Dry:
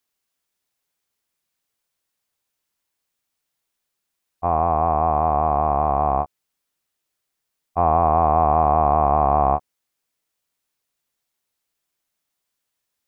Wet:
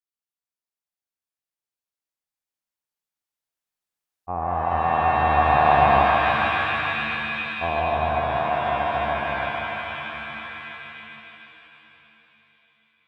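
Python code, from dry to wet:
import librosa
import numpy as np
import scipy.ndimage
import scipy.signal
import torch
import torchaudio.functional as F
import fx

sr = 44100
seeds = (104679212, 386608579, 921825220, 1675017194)

p1 = fx.doppler_pass(x, sr, speed_mps=12, closest_m=8.1, pass_at_s=5.95)
p2 = p1 + fx.echo_wet_bandpass(p1, sr, ms=145, feedback_pct=66, hz=930.0, wet_db=-4, dry=0)
y = fx.rev_shimmer(p2, sr, seeds[0], rt60_s=3.6, semitones=7, shimmer_db=-2, drr_db=5.0)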